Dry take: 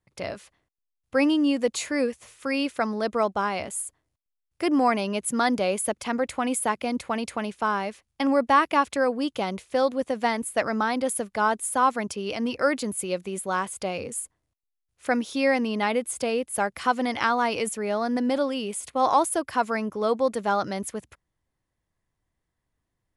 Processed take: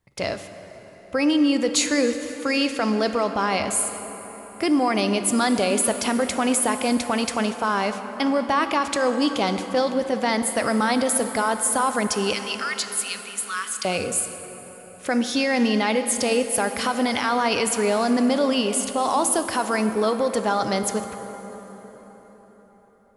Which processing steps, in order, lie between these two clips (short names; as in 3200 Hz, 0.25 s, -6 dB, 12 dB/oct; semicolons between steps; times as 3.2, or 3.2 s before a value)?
limiter -20 dBFS, peak gain reduction 11 dB; 12.33–13.85 elliptic high-pass 1200 Hz; plate-style reverb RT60 4.8 s, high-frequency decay 0.65×, DRR 7.5 dB; dynamic EQ 5200 Hz, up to +6 dB, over -47 dBFS, Q 0.86; gain +6 dB